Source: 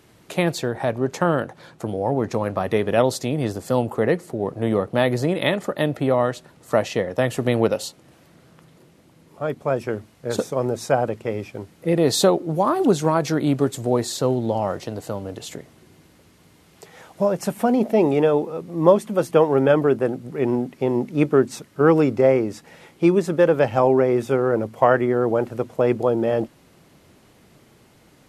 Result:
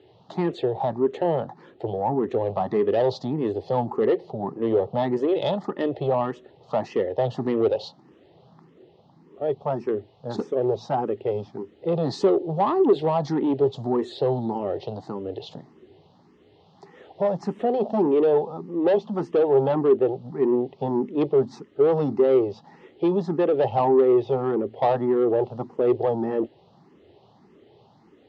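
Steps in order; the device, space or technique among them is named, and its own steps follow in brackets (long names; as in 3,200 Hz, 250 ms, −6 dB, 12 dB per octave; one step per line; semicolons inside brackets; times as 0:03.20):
barber-pole phaser into a guitar amplifier (frequency shifter mixed with the dry sound +1.7 Hz; soft clipping −18 dBFS, distortion −11 dB; loudspeaker in its box 91–4,100 Hz, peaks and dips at 400 Hz +8 dB, 820 Hz +7 dB, 1,500 Hz −10 dB, 2,300 Hz −10 dB)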